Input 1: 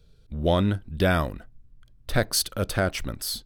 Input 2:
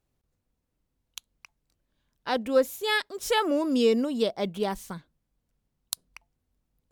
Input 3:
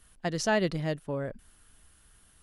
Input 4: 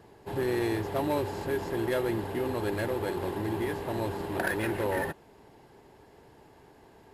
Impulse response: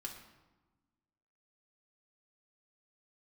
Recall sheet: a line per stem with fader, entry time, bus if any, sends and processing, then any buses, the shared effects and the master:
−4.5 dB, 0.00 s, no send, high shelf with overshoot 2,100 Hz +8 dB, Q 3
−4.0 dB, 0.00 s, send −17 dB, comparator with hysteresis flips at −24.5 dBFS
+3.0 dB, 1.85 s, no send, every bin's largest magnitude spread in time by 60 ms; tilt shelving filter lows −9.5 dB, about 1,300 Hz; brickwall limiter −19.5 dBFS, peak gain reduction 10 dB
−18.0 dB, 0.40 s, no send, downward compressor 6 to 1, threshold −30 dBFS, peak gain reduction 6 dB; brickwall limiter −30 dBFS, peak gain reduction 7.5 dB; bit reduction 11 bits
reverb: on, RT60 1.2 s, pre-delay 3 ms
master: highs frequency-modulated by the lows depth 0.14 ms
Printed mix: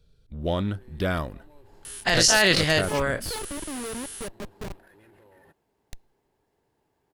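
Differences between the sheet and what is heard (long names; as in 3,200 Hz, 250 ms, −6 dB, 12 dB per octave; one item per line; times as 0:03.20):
stem 1: missing high shelf with overshoot 2,100 Hz +8 dB, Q 3
stem 2: send −17 dB → −23 dB
stem 3 +3.0 dB → +12.0 dB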